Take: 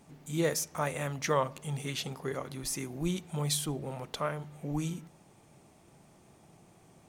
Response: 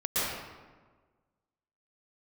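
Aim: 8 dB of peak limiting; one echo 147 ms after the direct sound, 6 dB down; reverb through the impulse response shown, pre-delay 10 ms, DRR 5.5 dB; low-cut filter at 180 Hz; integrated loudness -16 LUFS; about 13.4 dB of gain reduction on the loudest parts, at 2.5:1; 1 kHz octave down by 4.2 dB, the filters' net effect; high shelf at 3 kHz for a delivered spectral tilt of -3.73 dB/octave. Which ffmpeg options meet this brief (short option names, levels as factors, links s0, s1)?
-filter_complex "[0:a]highpass=180,equalizer=f=1000:t=o:g=-6,highshelf=f=3000:g=6.5,acompressor=threshold=0.00631:ratio=2.5,alimiter=level_in=3.35:limit=0.0631:level=0:latency=1,volume=0.299,aecho=1:1:147:0.501,asplit=2[s0][s1];[1:a]atrim=start_sample=2205,adelay=10[s2];[s1][s2]afir=irnorm=-1:irlink=0,volume=0.15[s3];[s0][s3]amix=inputs=2:normalize=0,volume=25.1"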